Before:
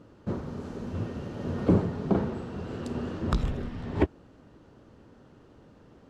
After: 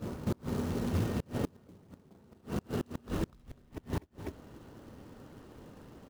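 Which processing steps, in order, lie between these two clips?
in parallel at -2.5 dB: compressor with a negative ratio -31 dBFS, ratio -0.5; on the sum: reverse echo 248 ms -8 dB; short-mantissa float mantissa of 2-bit; delay 249 ms -13.5 dB; inverted gate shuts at -17 dBFS, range -31 dB; trim -4 dB

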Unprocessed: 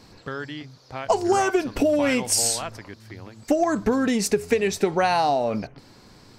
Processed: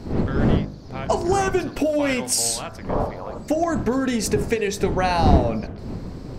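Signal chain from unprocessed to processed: wind noise 240 Hz -25 dBFS; 2.89–3.38 s: high-order bell 780 Hz +14.5 dB; de-hum 50.65 Hz, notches 36

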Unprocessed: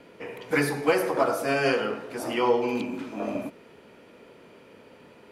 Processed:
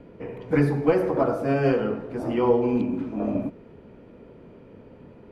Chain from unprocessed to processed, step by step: tilt EQ -4.5 dB/octave; trim -2.5 dB

